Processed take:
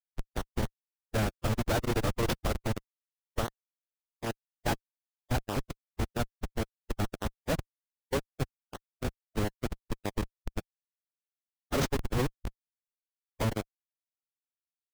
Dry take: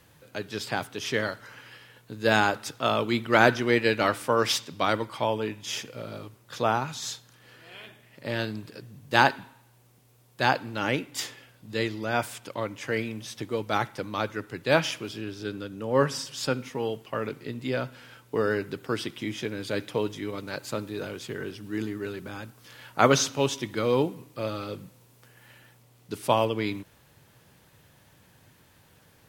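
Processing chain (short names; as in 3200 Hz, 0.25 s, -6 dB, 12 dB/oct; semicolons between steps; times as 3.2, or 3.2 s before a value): Schmitt trigger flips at -20.5 dBFS; time stretch by phase-locked vocoder 0.51×; gain +4.5 dB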